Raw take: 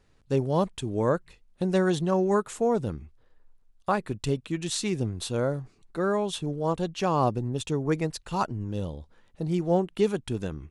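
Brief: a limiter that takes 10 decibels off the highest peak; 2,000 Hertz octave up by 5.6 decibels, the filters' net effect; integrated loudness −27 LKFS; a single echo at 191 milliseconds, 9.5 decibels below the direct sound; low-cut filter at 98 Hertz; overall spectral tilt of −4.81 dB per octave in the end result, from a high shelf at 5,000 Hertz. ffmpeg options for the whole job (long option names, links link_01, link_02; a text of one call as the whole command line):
ffmpeg -i in.wav -af "highpass=98,equalizer=frequency=2000:width_type=o:gain=6.5,highshelf=frequency=5000:gain=9,alimiter=limit=-18.5dB:level=0:latency=1,aecho=1:1:191:0.335,volume=2.5dB" out.wav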